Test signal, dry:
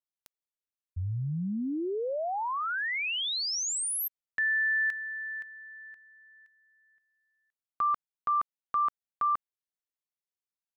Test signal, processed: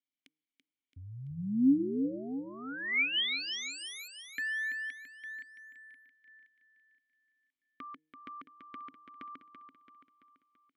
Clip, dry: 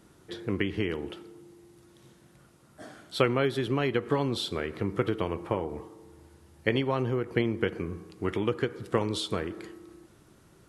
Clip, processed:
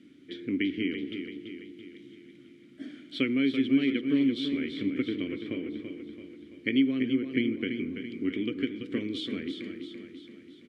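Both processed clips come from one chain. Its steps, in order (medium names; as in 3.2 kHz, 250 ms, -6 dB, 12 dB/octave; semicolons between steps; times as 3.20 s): de-hum 154.9 Hz, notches 3; in parallel at -0.5 dB: compression, threshold -40 dBFS; on the sum: vowel filter i; short-mantissa float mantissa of 8-bit; feedback delay 335 ms, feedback 52%, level -8 dB; trim +8.5 dB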